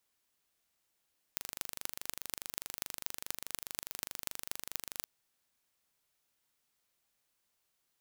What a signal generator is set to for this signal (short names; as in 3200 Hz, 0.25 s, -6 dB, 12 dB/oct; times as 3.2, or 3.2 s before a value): pulse train 24.8/s, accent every 6, -7 dBFS 3.68 s